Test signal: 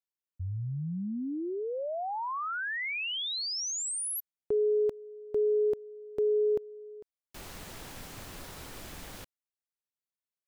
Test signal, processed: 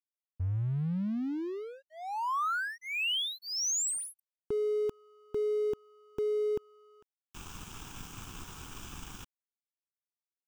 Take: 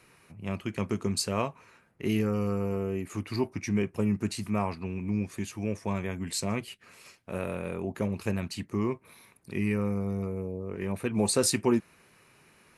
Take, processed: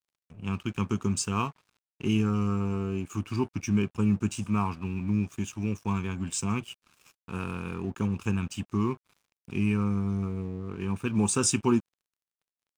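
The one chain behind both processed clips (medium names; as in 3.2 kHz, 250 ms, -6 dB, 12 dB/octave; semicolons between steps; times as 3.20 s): static phaser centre 2.9 kHz, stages 8; crossover distortion -54 dBFS; trim +4.5 dB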